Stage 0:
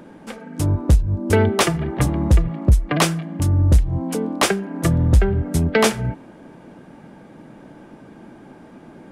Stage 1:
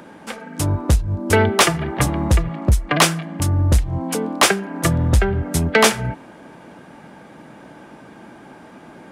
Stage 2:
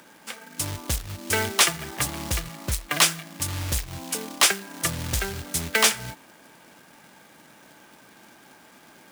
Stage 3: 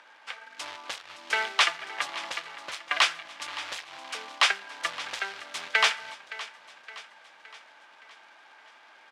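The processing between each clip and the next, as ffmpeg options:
-filter_complex "[0:a]highpass=41,acrossover=split=650[s0][s1];[s1]acontrast=84[s2];[s0][s2]amix=inputs=2:normalize=0,volume=0.891"
-af "acrusher=bits=3:mode=log:mix=0:aa=0.000001,tiltshelf=f=1300:g=-7,volume=0.422"
-af "asuperpass=centerf=1700:order=4:qfactor=0.54,aecho=1:1:567|1134|1701|2268|2835:0.158|0.084|0.0445|0.0236|0.0125"

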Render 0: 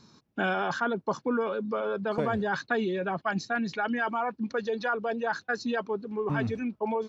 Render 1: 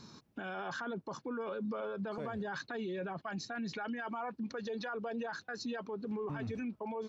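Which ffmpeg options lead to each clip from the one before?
-af "acompressor=threshold=0.0178:ratio=4,alimiter=level_in=3.76:limit=0.0631:level=0:latency=1:release=31,volume=0.266,volume=1.41"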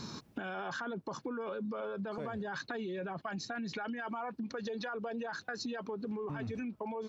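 -af "acompressor=threshold=0.00447:ratio=6,volume=3.16"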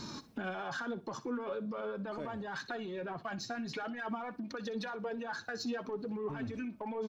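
-filter_complex "[0:a]asplit=2[s0][s1];[s1]asoftclip=type=tanh:threshold=0.0119,volume=0.631[s2];[s0][s2]amix=inputs=2:normalize=0,flanger=delay=3.2:depth=5.5:regen=43:speed=0.45:shape=sinusoidal,aecho=1:1:61|122|183:0.15|0.0389|0.0101,volume=1.12"

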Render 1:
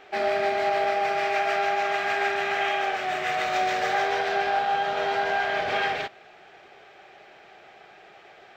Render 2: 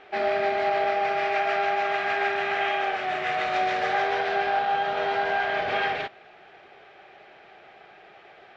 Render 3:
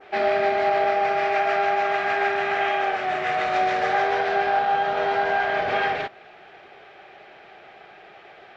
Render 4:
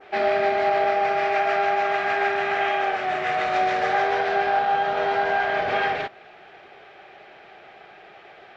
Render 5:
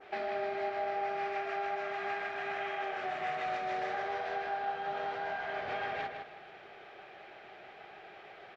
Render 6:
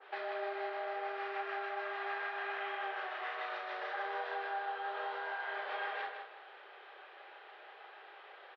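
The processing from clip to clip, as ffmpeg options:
-af "lowpass=4100"
-af "adynamicequalizer=threshold=0.00891:dfrequency=3200:dqfactor=0.98:tfrequency=3200:tqfactor=0.98:attack=5:release=100:ratio=0.375:range=2:mode=cutabove:tftype=bell,volume=1.5"
-af anull
-filter_complex "[0:a]acompressor=threshold=0.0355:ratio=5,asplit=2[s0][s1];[s1]adelay=157,lowpass=f=4800:p=1,volume=0.562,asplit=2[s2][s3];[s3]adelay=157,lowpass=f=4800:p=1,volume=0.3,asplit=2[s4][s5];[s5]adelay=157,lowpass=f=4800:p=1,volume=0.3,asplit=2[s6][s7];[s7]adelay=157,lowpass=f=4800:p=1,volume=0.3[s8];[s0][s2][s4][s6][s8]amix=inputs=5:normalize=0,volume=0.501"
-filter_complex "[0:a]highpass=f=470:w=0.5412,highpass=f=470:w=1.3066,equalizer=f=690:t=q:w=4:g=-10,equalizer=f=1000:t=q:w=4:g=4,equalizer=f=2300:t=q:w=4:g=-7,lowpass=f=4100:w=0.5412,lowpass=f=4100:w=1.3066,asplit=2[s0][s1];[s1]adelay=33,volume=0.473[s2];[s0][s2]amix=inputs=2:normalize=0"

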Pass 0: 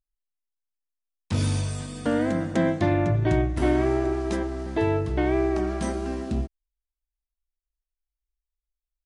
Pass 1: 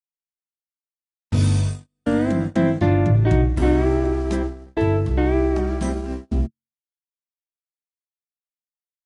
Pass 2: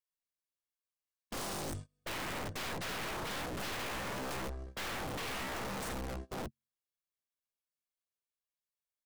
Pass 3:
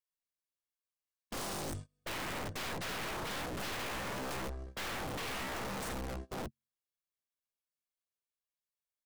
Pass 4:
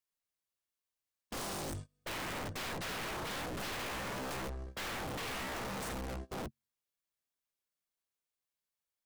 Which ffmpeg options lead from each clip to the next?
-filter_complex "[0:a]bandreject=f=45.1:t=h:w=4,bandreject=f=90.2:t=h:w=4,bandreject=f=135.3:t=h:w=4,bandreject=f=180.4:t=h:w=4,bandreject=f=225.5:t=h:w=4,bandreject=f=270.6:t=h:w=4,bandreject=f=315.7:t=h:w=4,agate=range=0.00398:threshold=0.0398:ratio=16:detection=peak,acrossover=split=280[s0][s1];[s0]acontrast=51[s2];[s2][s1]amix=inputs=2:normalize=0,volume=1.19"
-af "aecho=1:1:1.8:0.51,aeval=exprs='(mod(11.2*val(0)+1,2)-1)/11.2':c=same,aeval=exprs='(tanh(63.1*val(0)+0.35)-tanh(0.35))/63.1':c=same,volume=0.75"
-af anull
-af "asoftclip=type=hard:threshold=0.0106,volume=1.19"

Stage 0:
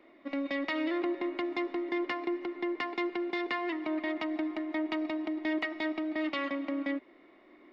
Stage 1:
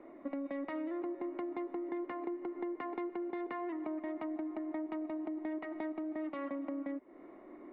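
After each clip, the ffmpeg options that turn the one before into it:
-af "lowpass=1100,acompressor=threshold=0.00631:ratio=6,volume=2.11"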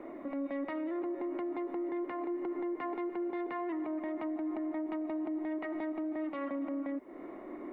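-af "alimiter=level_in=5.31:limit=0.0631:level=0:latency=1:release=34,volume=0.188,volume=2.51"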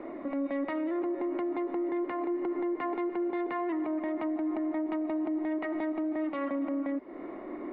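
-af "aresample=11025,aresample=44100,volume=1.68"

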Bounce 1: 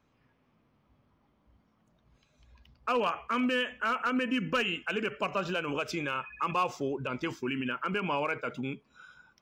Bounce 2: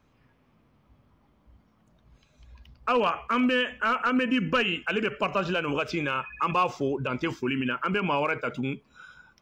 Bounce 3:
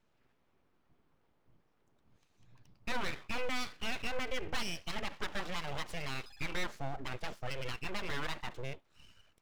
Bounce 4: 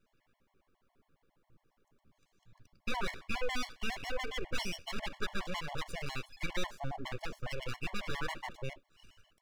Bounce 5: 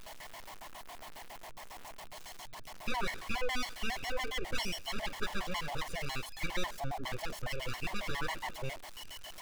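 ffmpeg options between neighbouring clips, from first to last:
-filter_complex "[0:a]acrossover=split=5200[s0][s1];[s1]acompressor=threshold=0.00112:ratio=4:attack=1:release=60[s2];[s0][s2]amix=inputs=2:normalize=0,lowshelf=f=80:g=7,volume=1.68"
-af "aeval=exprs='abs(val(0))':c=same,volume=0.376"
-af "afftfilt=real='re*gt(sin(2*PI*7.3*pts/sr)*(1-2*mod(floor(b*sr/1024/570),2)),0)':imag='im*gt(sin(2*PI*7.3*pts/sr)*(1-2*mod(floor(b*sr/1024/570),2)),0)':win_size=1024:overlap=0.75,volume=1.41"
-af "aeval=exprs='val(0)+0.5*0.00944*sgn(val(0))':c=same"

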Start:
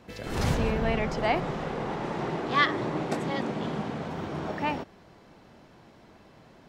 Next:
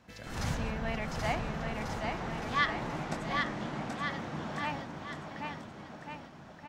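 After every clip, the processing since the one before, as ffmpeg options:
-filter_complex "[0:a]equalizer=f=400:t=o:w=0.67:g=-8,equalizer=f=1600:t=o:w=0.67:g=3,equalizer=f=6300:t=o:w=0.67:g=4,asplit=2[s0][s1];[s1]aecho=0:1:780|1443|2007|2486|2893:0.631|0.398|0.251|0.158|0.1[s2];[s0][s2]amix=inputs=2:normalize=0,volume=0.447"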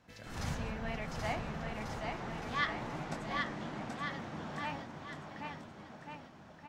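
-af "flanger=delay=6.3:depth=6.9:regen=-63:speed=0.98:shape=triangular"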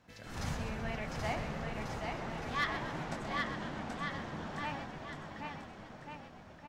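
-filter_complex "[0:a]asoftclip=type=hard:threshold=0.0596,asplit=9[s0][s1][s2][s3][s4][s5][s6][s7][s8];[s1]adelay=128,afreqshift=-75,volume=0.316[s9];[s2]adelay=256,afreqshift=-150,volume=0.2[s10];[s3]adelay=384,afreqshift=-225,volume=0.126[s11];[s4]adelay=512,afreqshift=-300,volume=0.0794[s12];[s5]adelay=640,afreqshift=-375,volume=0.0495[s13];[s6]adelay=768,afreqshift=-450,volume=0.0313[s14];[s7]adelay=896,afreqshift=-525,volume=0.0197[s15];[s8]adelay=1024,afreqshift=-600,volume=0.0124[s16];[s0][s9][s10][s11][s12][s13][s14][s15][s16]amix=inputs=9:normalize=0"

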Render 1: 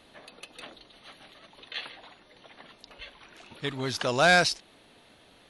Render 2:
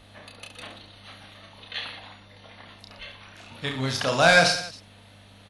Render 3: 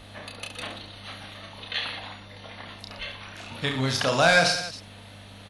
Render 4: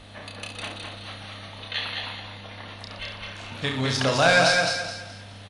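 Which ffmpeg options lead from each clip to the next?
-af "equalizer=f=370:w=5.4:g=-10.5,aeval=exprs='val(0)+0.00178*(sin(2*PI*50*n/s)+sin(2*PI*2*50*n/s)/2+sin(2*PI*3*50*n/s)/3+sin(2*PI*4*50*n/s)/4+sin(2*PI*5*50*n/s)/5)':c=same,aecho=1:1:30|69|119.7|185.6|271.3:0.631|0.398|0.251|0.158|0.1,volume=1.26"
-af "acompressor=threshold=0.02:ratio=1.5,volume=1.88"
-af "aresample=22050,aresample=44100,aecho=1:1:211|422|633|844:0.631|0.196|0.0606|0.0188"

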